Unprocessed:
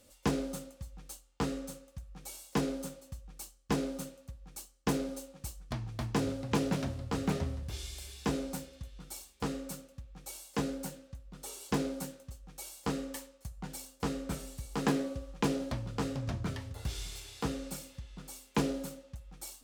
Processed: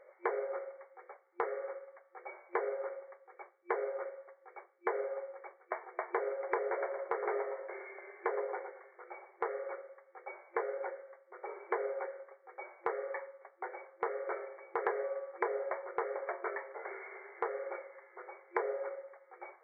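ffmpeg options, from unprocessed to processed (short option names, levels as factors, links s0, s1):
-filter_complex "[0:a]asettb=1/sr,asplit=3[s0][s1][s2];[s0]atrim=end=6.664[s3];[s1]atrim=start=6.66:end=9.44,asetpts=PTS-STARTPTS,afade=t=in:d=0.004:c=qsin,afade=t=out:st=2.776:d=0.004:c=qsin,asplit=2[s4][s5];[s5]adelay=114,lowpass=f=2200:p=1,volume=0.355,asplit=2[s6][s7];[s7]adelay=114,lowpass=f=2200:p=1,volume=0.29,asplit=2[s8][s9];[s9]adelay=114,lowpass=f=2200:p=1,volume=0.29[s10];[s4][s6][s8][s10]amix=inputs=4:normalize=0,atrim=end_sample=122598[s11];[s2]atrim=start=9.436[s12];[s3][s11]acrossfade=d=0.004:c1=hsin:c2=qsin[s13];[s13][s12]acrossfade=d=0.004:c1=qsin:c2=hsin,afftfilt=real='re*between(b*sr/4096,350,2300)':imag='im*between(b*sr/4096,350,2300)':win_size=4096:overlap=0.75,acompressor=threshold=0.00794:ratio=2.5,volume=2.66"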